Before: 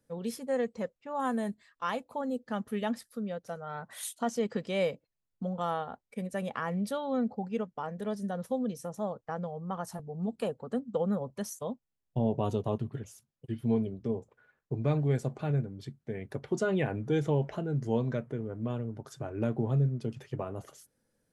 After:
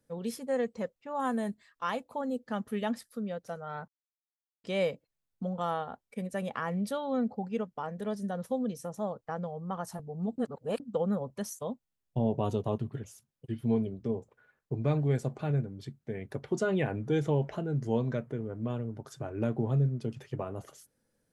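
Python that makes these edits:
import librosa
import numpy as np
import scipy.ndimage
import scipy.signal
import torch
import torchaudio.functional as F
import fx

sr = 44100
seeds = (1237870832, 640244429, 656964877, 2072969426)

y = fx.edit(x, sr, fx.silence(start_s=3.88, length_s=0.76),
    fx.reverse_span(start_s=10.38, length_s=0.42), tone=tone)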